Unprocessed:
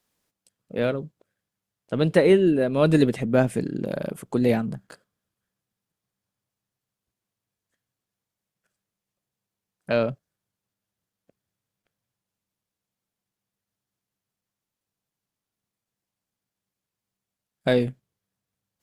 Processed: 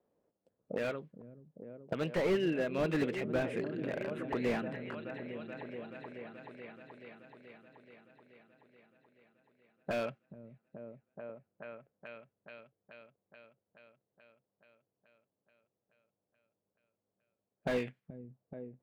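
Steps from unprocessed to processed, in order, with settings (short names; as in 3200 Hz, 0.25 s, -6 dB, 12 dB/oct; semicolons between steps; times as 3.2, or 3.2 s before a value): tilt -3 dB/oct; auto-wah 510–2400 Hz, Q 2, up, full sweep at -21 dBFS; repeats that get brighter 0.429 s, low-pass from 200 Hz, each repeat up 1 oct, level -6 dB; slew limiter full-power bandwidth 14 Hz; gain +5.5 dB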